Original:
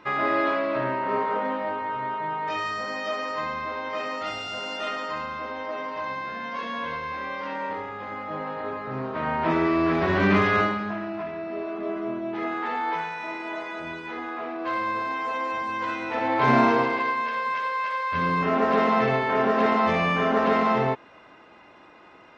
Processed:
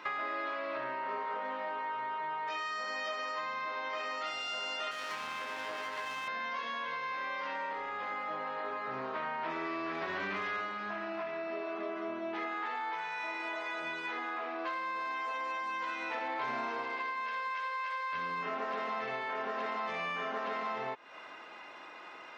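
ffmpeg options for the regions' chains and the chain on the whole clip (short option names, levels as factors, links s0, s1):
-filter_complex "[0:a]asettb=1/sr,asplit=3[s0][s1][s2];[s0]atrim=end=4.914[s3];[s1]atrim=start=4.91:end=6.28,asetpts=PTS-STARTPTS,afade=t=in:d=0.004:c=qsin,afade=t=out:st=1.366:d=0.004:c=qsin,highpass=60,bass=f=250:g=6,treble=f=4000:g=3,aeval=exprs='max(val(0),0)':c=same[s4];[s2]atrim=start=6.276[s5];[s3][s4]acrossfade=d=0.004:c1=hsin:c2=qsin[s6];[s6][s5]acrossfade=d=0.004:c1=qsin:c2=hsin,highpass=f=980:p=1,acompressor=threshold=0.01:ratio=6,volume=1.78"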